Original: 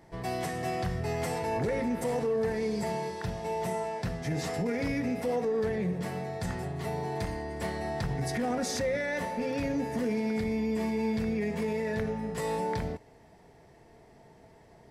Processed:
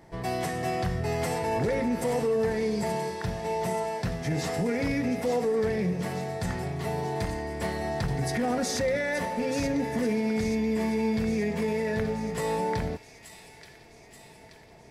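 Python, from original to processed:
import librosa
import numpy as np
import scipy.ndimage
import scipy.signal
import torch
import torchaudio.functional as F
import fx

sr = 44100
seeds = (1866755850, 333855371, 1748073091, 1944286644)

y = fx.echo_wet_highpass(x, sr, ms=879, feedback_pct=60, hz=2500.0, wet_db=-8)
y = y * librosa.db_to_amplitude(3.0)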